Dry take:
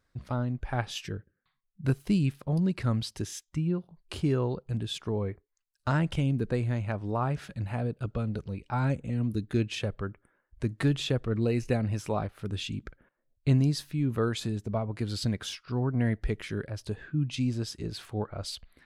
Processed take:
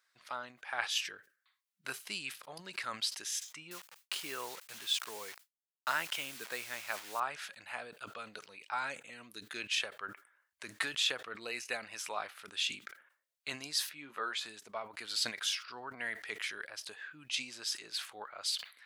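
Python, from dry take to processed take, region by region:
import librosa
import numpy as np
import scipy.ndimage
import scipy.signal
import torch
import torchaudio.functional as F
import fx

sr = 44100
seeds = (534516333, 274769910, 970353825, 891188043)

y = fx.chain(x, sr, fx.quant_dither(seeds[0], bits=8, dither='none'),
    fx.mod_noise(seeds[1], snr_db=34), at=(3.71, 7.2))
y = fx.chain(y, sr, fx.lowpass(hz=2200.0, slope=6),
    fx.low_shelf(hz=130.0, db=-9.5),
    fx.doubler(ms=14.0, db=-6.0), at=(13.89, 14.46))
y = scipy.signal.sosfilt(scipy.signal.butter(2, 1400.0, 'highpass', fs=sr, output='sos'), y)
y = fx.sustainer(y, sr, db_per_s=150.0)
y = y * librosa.db_to_amplitude(4.0)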